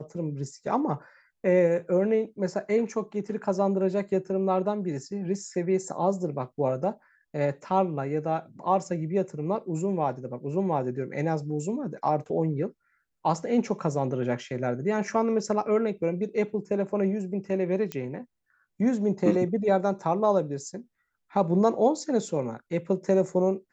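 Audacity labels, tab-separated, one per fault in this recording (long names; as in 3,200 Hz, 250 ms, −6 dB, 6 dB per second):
17.920000	17.920000	click −16 dBFS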